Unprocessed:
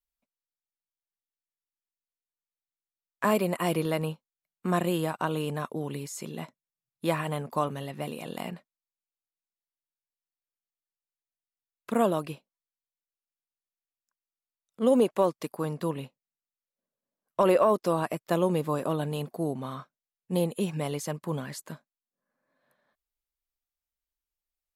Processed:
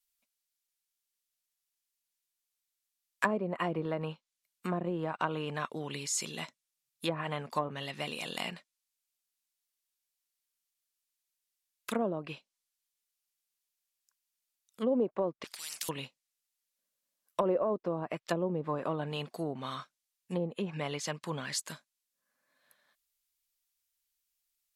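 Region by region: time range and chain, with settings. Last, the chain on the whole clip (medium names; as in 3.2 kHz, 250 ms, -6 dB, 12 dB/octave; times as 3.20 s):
15.44–15.89 s: high-pass 1.3 kHz + spectrum-flattening compressor 10:1
whole clip: low-pass that closes with the level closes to 540 Hz, closed at -22 dBFS; tilt shelf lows -9.5 dB, about 1.5 kHz; trim +2.5 dB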